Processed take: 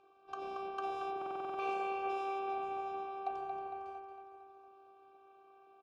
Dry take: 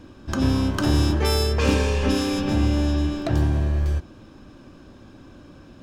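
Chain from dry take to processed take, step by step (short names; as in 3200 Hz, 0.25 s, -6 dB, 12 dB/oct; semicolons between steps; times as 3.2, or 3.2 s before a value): de-hum 49.03 Hz, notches 7; robotiser 391 Hz; vowel filter a; on a send: feedback echo 0.228 s, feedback 54%, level -8 dB; on the sum: stuck buffer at 1.17, samples 2048, times 8; gain -1 dB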